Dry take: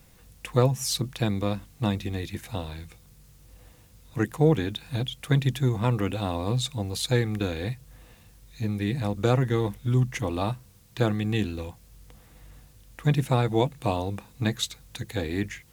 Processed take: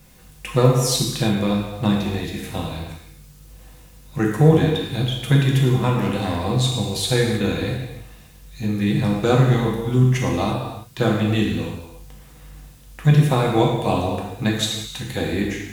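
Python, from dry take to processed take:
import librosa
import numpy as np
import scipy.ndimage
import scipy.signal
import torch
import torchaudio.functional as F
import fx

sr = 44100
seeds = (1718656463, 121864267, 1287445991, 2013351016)

y = fx.clip_hard(x, sr, threshold_db=-23.0, at=(5.98, 6.39))
y = fx.rev_gated(y, sr, seeds[0], gate_ms=380, shape='falling', drr_db=-2.0)
y = F.gain(torch.from_numpy(y), 3.0).numpy()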